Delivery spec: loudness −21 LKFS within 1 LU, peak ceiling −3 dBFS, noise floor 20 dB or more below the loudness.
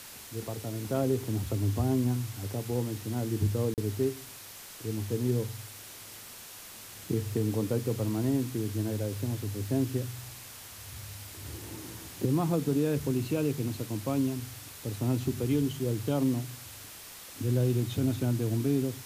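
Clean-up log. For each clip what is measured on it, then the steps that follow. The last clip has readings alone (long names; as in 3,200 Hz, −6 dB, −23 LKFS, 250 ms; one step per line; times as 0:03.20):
number of dropouts 1; longest dropout 38 ms; background noise floor −47 dBFS; target noise floor −51 dBFS; integrated loudness −31.0 LKFS; sample peak −17.0 dBFS; target loudness −21.0 LKFS
→ repair the gap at 0:03.74, 38 ms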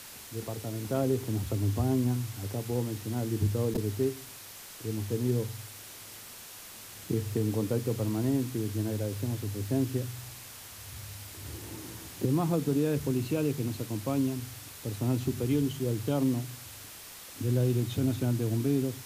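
number of dropouts 0; background noise floor −47 dBFS; target noise floor −51 dBFS
→ broadband denoise 6 dB, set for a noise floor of −47 dBFS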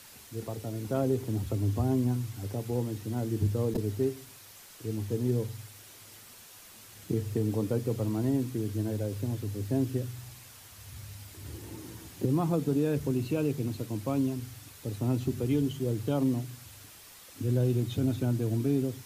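background noise floor −52 dBFS; integrated loudness −31.0 LKFS; sample peak −17.5 dBFS; target loudness −21.0 LKFS
→ level +10 dB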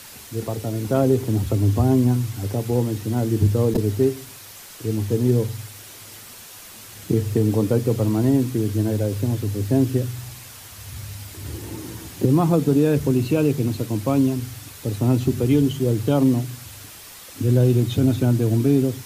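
integrated loudness −21.0 LKFS; sample peak −7.5 dBFS; background noise floor −42 dBFS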